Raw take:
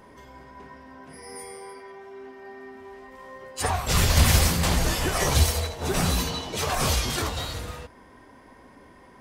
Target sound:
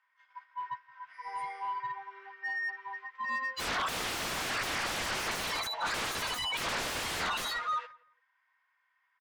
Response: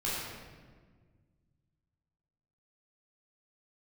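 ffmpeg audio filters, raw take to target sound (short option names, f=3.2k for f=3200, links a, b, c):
-filter_complex "[0:a]lowpass=7.6k,agate=range=-18dB:threshold=-44dB:ratio=16:detection=peak,aemphasis=mode=reproduction:type=cd,afftdn=nr=25:nf=-33,highpass=f=1.4k:w=0.5412,highpass=f=1.4k:w=1.3066,highshelf=f=5.4k:g=-8.5,acompressor=threshold=-39dB:ratio=6,aeval=exprs='0.0316*sin(PI/2*7.94*val(0)/0.0316)':c=same,asplit=2[a][b];[b]highpass=f=720:p=1,volume=11dB,asoftclip=type=tanh:threshold=-30dB[c];[a][c]amix=inputs=2:normalize=0,lowpass=f=2k:p=1,volume=-6dB,asplit=2[d][e];[e]adelay=171,lowpass=f=2k:p=1,volume=-22dB,asplit=2[f][g];[g]adelay=171,lowpass=f=2k:p=1,volume=0.25[h];[f][h]amix=inputs=2:normalize=0[i];[d][i]amix=inputs=2:normalize=0,volume=3.5dB"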